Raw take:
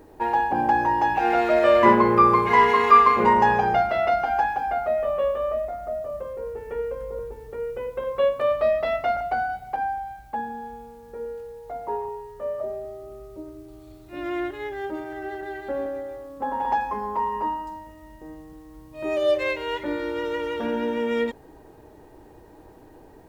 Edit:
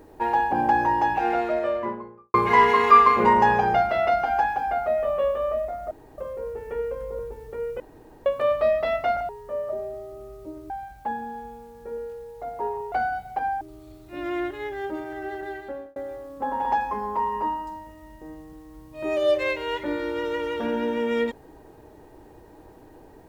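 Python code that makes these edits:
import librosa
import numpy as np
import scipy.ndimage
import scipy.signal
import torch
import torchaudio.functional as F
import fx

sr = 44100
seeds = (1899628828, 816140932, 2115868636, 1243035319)

y = fx.studio_fade_out(x, sr, start_s=0.85, length_s=1.49)
y = fx.edit(y, sr, fx.room_tone_fill(start_s=5.91, length_s=0.27),
    fx.room_tone_fill(start_s=7.8, length_s=0.46),
    fx.swap(start_s=9.29, length_s=0.69, other_s=12.2, other_length_s=1.41),
    fx.fade_out_span(start_s=15.5, length_s=0.46), tone=tone)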